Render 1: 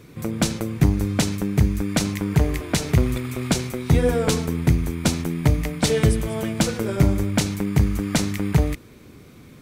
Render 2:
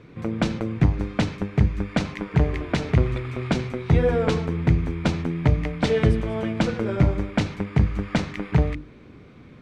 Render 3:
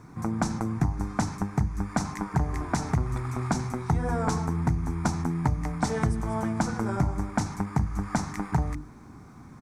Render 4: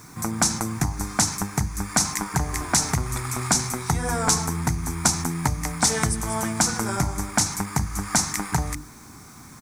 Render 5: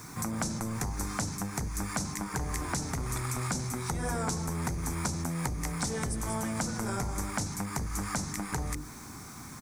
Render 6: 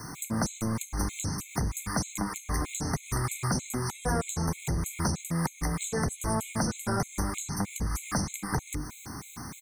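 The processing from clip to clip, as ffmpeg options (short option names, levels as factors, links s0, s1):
-af "lowpass=2900,bandreject=f=50:t=h:w=6,bandreject=f=100:t=h:w=6,bandreject=f=150:t=h:w=6,bandreject=f=200:t=h:w=6,bandreject=f=250:t=h:w=6,bandreject=f=300:t=h:w=6,bandreject=f=350:t=h:w=6,bandreject=f=400:t=h:w=6"
-af "firequalizer=gain_entry='entry(250,0);entry(520,-11);entry(800,8);entry(2900,-15);entry(5700,9);entry(9100,14)':delay=0.05:min_phase=1,acompressor=threshold=0.0708:ratio=3"
-af "crystalizer=i=9:c=0"
-filter_complex "[0:a]acrossover=split=450[s0][s1];[s0]asoftclip=type=tanh:threshold=0.0282[s2];[s1]acompressor=threshold=0.02:ratio=6[s3];[s2][s3]amix=inputs=2:normalize=0"
-filter_complex "[0:a]acrossover=split=640[s0][s1];[s1]asoftclip=type=tanh:threshold=0.0473[s2];[s0][s2]amix=inputs=2:normalize=0,afftfilt=real='re*gt(sin(2*PI*3.2*pts/sr)*(1-2*mod(floor(b*sr/1024/2100),2)),0)':imag='im*gt(sin(2*PI*3.2*pts/sr)*(1-2*mod(floor(b*sr/1024/2100),2)),0)':win_size=1024:overlap=0.75,volume=1.88"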